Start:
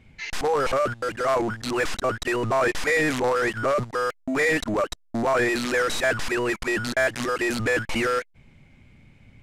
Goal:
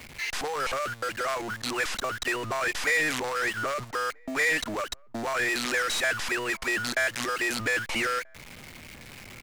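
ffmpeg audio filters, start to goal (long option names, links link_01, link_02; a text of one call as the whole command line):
ffmpeg -i in.wav -filter_complex "[0:a]aeval=exprs='val(0)+0.5*0.0158*sgn(val(0))':channel_layout=same,lowshelf=frequency=380:gain=-10.5,acrossover=split=130|1400[link_01][link_02][link_03];[link_02]acompressor=threshold=-31dB:ratio=6[link_04];[link_01][link_04][link_03]amix=inputs=3:normalize=0,asplit=2[link_05][link_06];[link_06]adelay=1283,volume=-29dB,highshelf=frequency=4000:gain=-28.9[link_07];[link_05][link_07]amix=inputs=2:normalize=0" out.wav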